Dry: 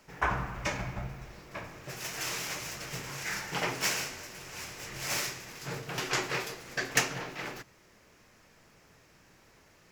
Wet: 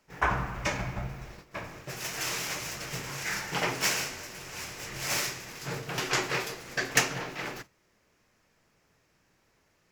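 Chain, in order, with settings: gate -48 dBFS, range -11 dB; gain +2.5 dB

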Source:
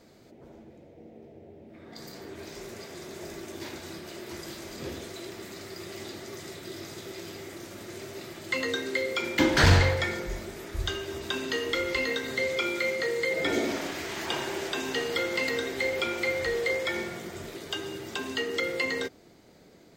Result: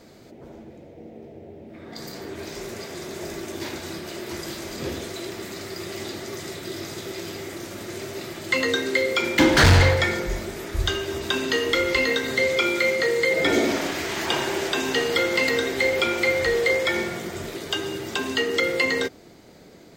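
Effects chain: hard clip -17.5 dBFS, distortion -15 dB; gain +7 dB

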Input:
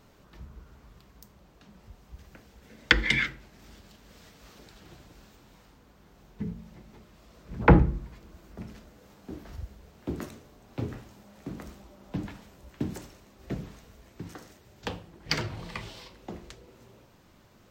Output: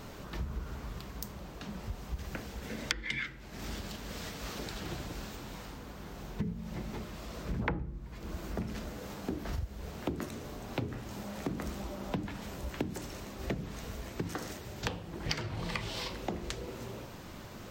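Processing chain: compressor 12:1, threshold -44 dBFS, peak gain reduction 32.5 dB; gain +12 dB

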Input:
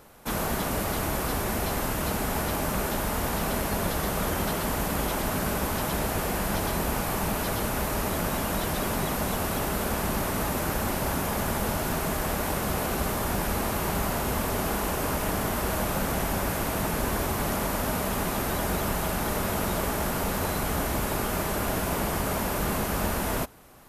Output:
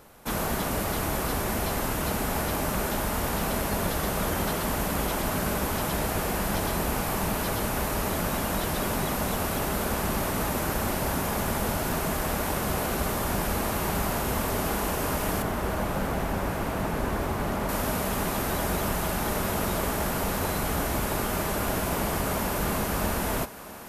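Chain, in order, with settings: 15.42–17.69 high shelf 3700 Hz -11 dB; thinning echo 0.649 s, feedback 56%, high-pass 220 Hz, level -14.5 dB

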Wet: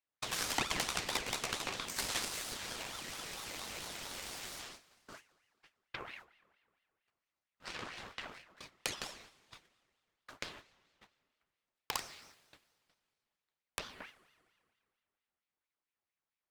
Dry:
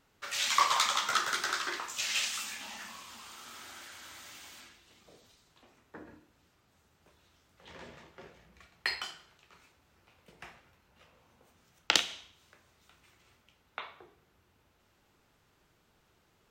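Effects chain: gate -58 dBFS, range -34 dB; compressor 3:1, threshold -50 dBFS, peak gain reduction 22.5 dB; added harmonics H 3 -11 dB, 4 -14 dB, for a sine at -22 dBFS; sine folder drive 18 dB, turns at -19.5 dBFS; on a send at -17 dB: reverb RT60 2.3 s, pre-delay 3 ms; on the sum: ring modulator with a swept carrier 1600 Hz, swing 55%, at 4.4 Hz; gain +4 dB

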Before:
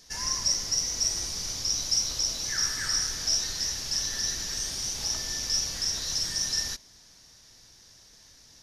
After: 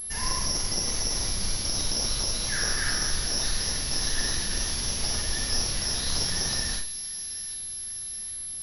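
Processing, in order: limiter -19.5 dBFS, peak gain reduction 6 dB; high shelf 2100 Hz +9 dB; thin delay 0.779 s, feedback 57%, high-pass 2000 Hz, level -13.5 dB; vibrato 11 Hz 63 cents; tilt -2 dB/oct; Schroeder reverb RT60 0.39 s, combs from 31 ms, DRR 0.5 dB; pulse-width modulation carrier 11000 Hz

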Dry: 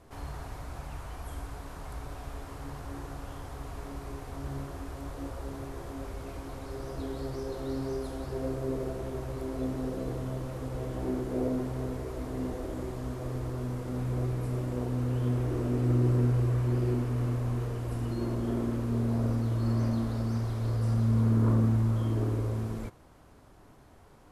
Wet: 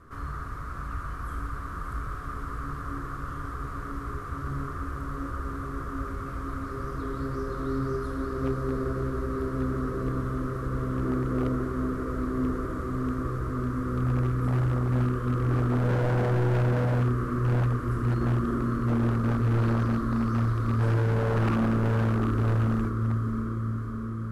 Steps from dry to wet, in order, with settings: EQ curve 240 Hz 0 dB, 460 Hz -4 dB, 840 Hz -16 dB, 1200 Hz +12 dB, 2500 Hz -9 dB; diffused feedback echo 0.59 s, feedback 66%, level -5.5 dB; wavefolder -23 dBFS; gain +4 dB

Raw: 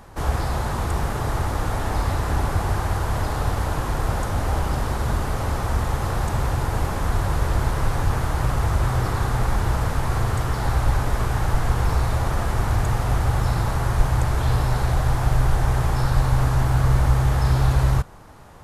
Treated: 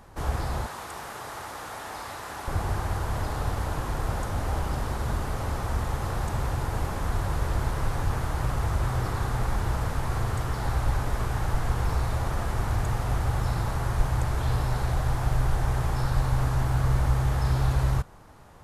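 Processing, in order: 0.66–2.48 HPF 890 Hz 6 dB/oct; gain -5.5 dB

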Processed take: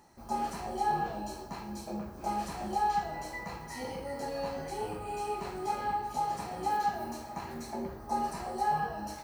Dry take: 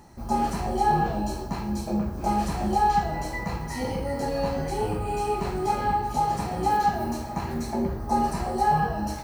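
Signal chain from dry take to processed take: low shelf 230 Hz -11 dB; gain -6.5 dB

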